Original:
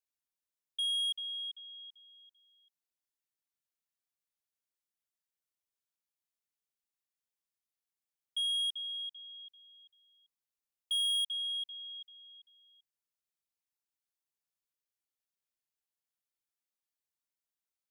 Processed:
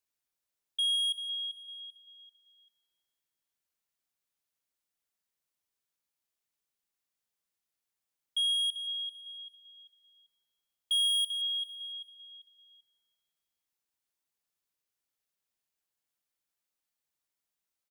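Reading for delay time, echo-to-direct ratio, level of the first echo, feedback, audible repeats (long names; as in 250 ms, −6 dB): 170 ms, −14.0 dB, −15.5 dB, 53%, 4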